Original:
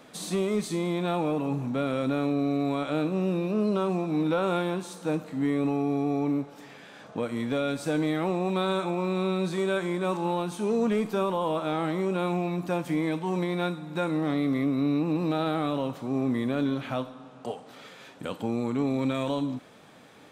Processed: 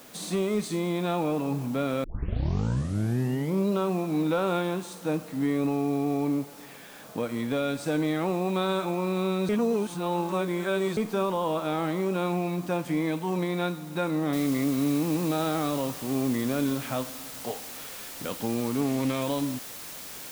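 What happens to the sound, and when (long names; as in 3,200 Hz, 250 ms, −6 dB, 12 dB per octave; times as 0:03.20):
0:02.04: tape start 1.71 s
0:09.49–0:10.97: reverse
0:14.33: noise floor change −52 dB −41 dB
0:18.81–0:19.22: highs frequency-modulated by the lows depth 0.2 ms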